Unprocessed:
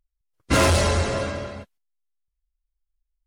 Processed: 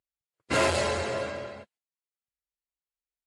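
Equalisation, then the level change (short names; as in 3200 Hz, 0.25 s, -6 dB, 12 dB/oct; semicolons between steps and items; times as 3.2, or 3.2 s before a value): speaker cabinet 160–9700 Hz, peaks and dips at 180 Hz -9 dB, 280 Hz -6 dB, 1200 Hz -4 dB, 3500 Hz -3 dB, 5800 Hz -8 dB, 9100 Hz -4 dB; -3.5 dB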